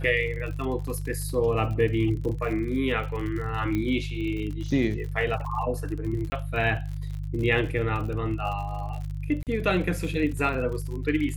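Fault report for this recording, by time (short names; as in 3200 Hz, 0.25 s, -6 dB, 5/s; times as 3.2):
crackle 54/s -34 dBFS
hum 50 Hz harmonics 3 -32 dBFS
0.87 gap 3.6 ms
3.75 pop -17 dBFS
6.3–6.32 gap 20 ms
9.43–9.47 gap 38 ms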